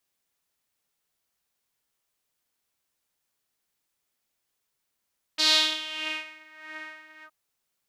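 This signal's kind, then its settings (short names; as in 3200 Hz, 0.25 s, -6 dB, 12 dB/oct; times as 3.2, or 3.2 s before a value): synth patch with tremolo D#4, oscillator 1 saw, sub -24.5 dB, filter bandpass, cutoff 1100 Hz, Q 4, filter envelope 2 oct, filter decay 1.19 s, attack 19 ms, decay 0.84 s, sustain -24 dB, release 0.07 s, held 1.85 s, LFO 1.6 Hz, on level 12.5 dB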